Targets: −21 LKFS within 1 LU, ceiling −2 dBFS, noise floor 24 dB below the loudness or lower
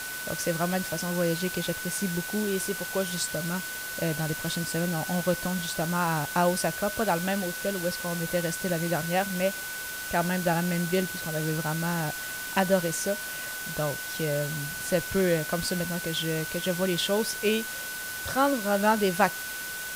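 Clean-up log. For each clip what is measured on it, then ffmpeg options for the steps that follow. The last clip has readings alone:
interfering tone 1,500 Hz; level of the tone −36 dBFS; background noise floor −36 dBFS; target noise floor −52 dBFS; integrated loudness −28.0 LKFS; sample peak −7.5 dBFS; target loudness −21.0 LKFS
→ -af "bandreject=frequency=1500:width=30"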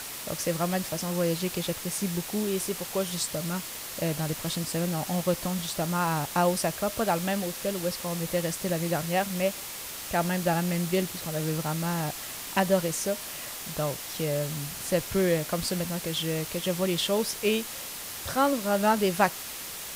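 interfering tone none found; background noise floor −38 dBFS; target noise floor −53 dBFS
→ -af "afftdn=noise_reduction=15:noise_floor=-38"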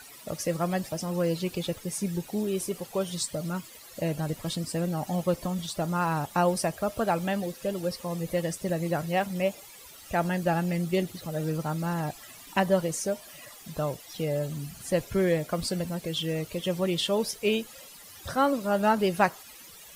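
background noise floor −49 dBFS; target noise floor −53 dBFS
→ -af "afftdn=noise_reduction=6:noise_floor=-49"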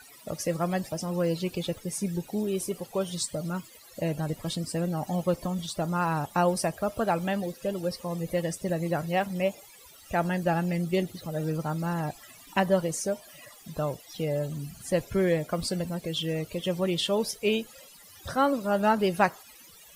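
background noise floor −52 dBFS; target noise floor −54 dBFS
→ -af "afftdn=noise_reduction=6:noise_floor=-52"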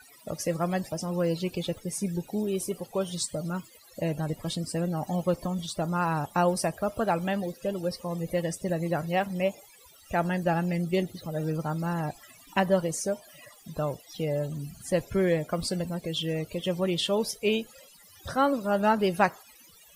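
background noise floor −55 dBFS; integrated loudness −29.5 LKFS; sample peak −7.5 dBFS; target loudness −21.0 LKFS
→ -af "volume=8.5dB,alimiter=limit=-2dB:level=0:latency=1"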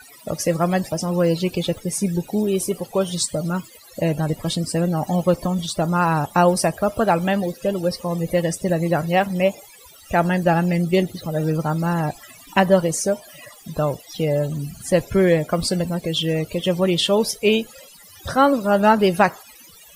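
integrated loudness −21.0 LKFS; sample peak −2.0 dBFS; background noise floor −46 dBFS

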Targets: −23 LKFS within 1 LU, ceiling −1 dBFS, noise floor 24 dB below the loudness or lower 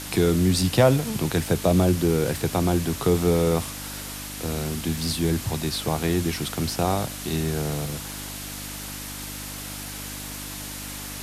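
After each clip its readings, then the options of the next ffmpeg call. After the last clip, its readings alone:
mains hum 50 Hz; hum harmonics up to 300 Hz; level of the hum −38 dBFS; background noise floor −35 dBFS; target noise floor −49 dBFS; integrated loudness −25.0 LKFS; sample peak −4.5 dBFS; target loudness −23.0 LKFS
→ -af "bandreject=frequency=50:width_type=h:width=4,bandreject=frequency=100:width_type=h:width=4,bandreject=frequency=150:width_type=h:width=4,bandreject=frequency=200:width_type=h:width=4,bandreject=frequency=250:width_type=h:width=4,bandreject=frequency=300:width_type=h:width=4"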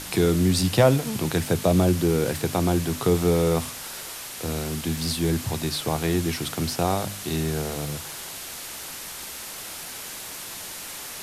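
mains hum none found; background noise floor −37 dBFS; target noise floor −50 dBFS
→ -af "afftdn=noise_reduction=13:noise_floor=-37"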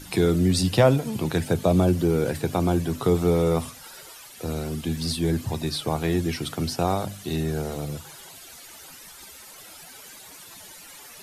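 background noise floor −45 dBFS; target noise floor −49 dBFS
→ -af "afftdn=noise_reduction=6:noise_floor=-45"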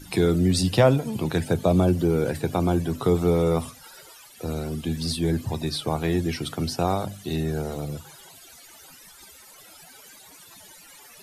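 background noise floor −49 dBFS; integrated loudness −24.5 LKFS; sample peak −5.0 dBFS; target loudness −23.0 LKFS
→ -af "volume=1.5dB"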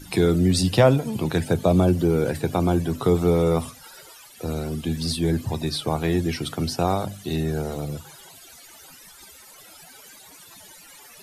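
integrated loudness −23.0 LKFS; sample peak −3.5 dBFS; background noise floor −47 dBFS

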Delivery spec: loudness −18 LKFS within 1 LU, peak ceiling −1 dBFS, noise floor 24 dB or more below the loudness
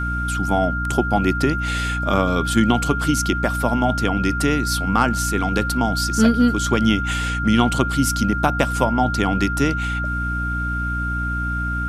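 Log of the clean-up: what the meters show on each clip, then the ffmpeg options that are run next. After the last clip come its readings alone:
mains hum 60 Hz; hum harmonics up to 300 Hz; level of the hum −23 dBFS; interfering tone 1,400 Hz; level of the tone −24 dBFS; integrated loudness −20.0 LKFS; sample peak −1.5 dBFS; target loudness −18.0 LKFS
→ -af "bandreject=frequency=60:width_type=h:width=4,bandreject=frequency=120:width_type=h:width=4,bandreject=frequency=180:width_type=h:width=4,bandreject=frequency=240:width_type=h:width=4,bandreject=frequency=300:width_type=h:width=4"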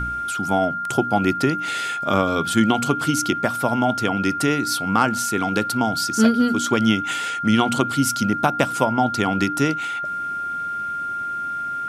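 mains hum none found; interfering tone 1,400 Hz; level of the tone −24 dBFS
→ -af "bandreject=frequency=1400:width=30"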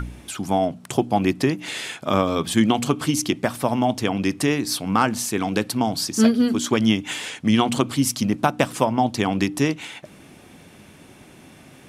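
interfering tone none found; integrated loudness −22.0 LKFS; sample peak −2.5 dBFS; target loudness −18.0 LKFS
→ -af "volume=4dB,alimiter=limit=-1dB:level=0:latency=1"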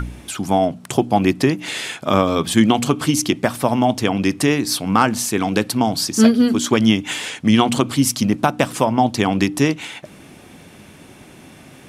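integrated loudness −18.0 LKFS; sample peak −1.0 dBFS; background noise floor −44 dBFS

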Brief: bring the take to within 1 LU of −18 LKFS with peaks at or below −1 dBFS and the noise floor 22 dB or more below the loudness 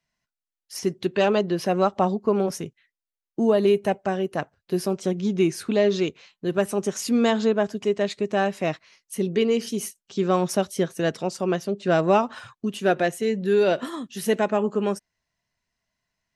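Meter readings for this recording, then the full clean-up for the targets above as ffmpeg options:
integrated loudness −24.0 LKFS; sample peak −7.5 dBFS; target loudness −18.0 LKFS
→ -af "volume=6dB"

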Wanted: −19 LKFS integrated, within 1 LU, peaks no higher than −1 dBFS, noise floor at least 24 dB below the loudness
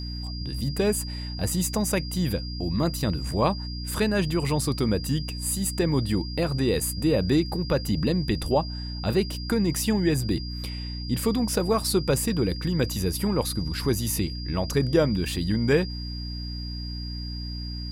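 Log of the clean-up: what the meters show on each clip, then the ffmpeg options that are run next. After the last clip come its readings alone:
mains hum 60 Hz; hum harmonics up to 300 Hz; level of the hum −31 dBFS; interfering tone 4,800 Hz; level of the tone −38 dBFS; integrated loudness −26.0 LKFS; sample peak −8.5 dBFS; target loudness −19.0 LKFS
→ -af "bandreject=frequency=60:width_type=h:width=4,bandreject=frequency=120:width_type=h:width=4,bandreject=frequency=180:width_type=h:width=4,bandreject=frequency=240:width_type=h:width=4,bandreject=frequency=300:width_type=h:width=4"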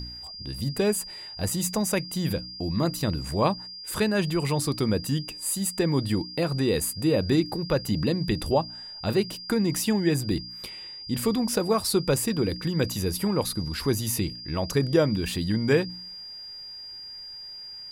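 mains hum none found; interfering tone 4,800 Hz; level of the tone −38 dBFS
→ -af "bandreject=frequency=4800:width=30"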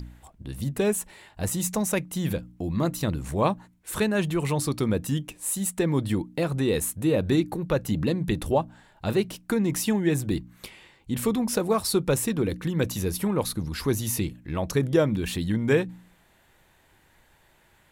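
interfering tone none found; integrated loudness −26.5 LKFS; sample peak −9.5 dBFS; target loudness −19.0 LKFS
→ -af "volume=7.5dB"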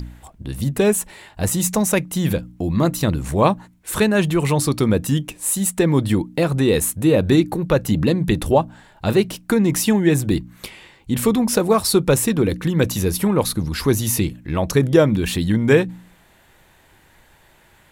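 integrated loudness −19.0 LKFS; sample peak −2.0 dBFS; background noise floor −54 dBFS

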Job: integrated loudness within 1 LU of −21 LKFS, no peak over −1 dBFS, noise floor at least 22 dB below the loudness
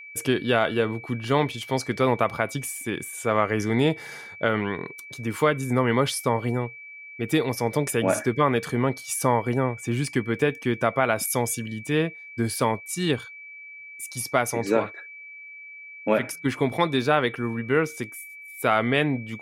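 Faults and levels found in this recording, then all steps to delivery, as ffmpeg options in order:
interfering tone 2,300 Hz; level of the tone −40 dBFS; integrated loudness −25.0 LKFS; sample peak −7.0 dBFS; target loudness −21.0 LKFS
→ -af "bandreject=frequency=2300:width=30"
-af "volume=4dB"

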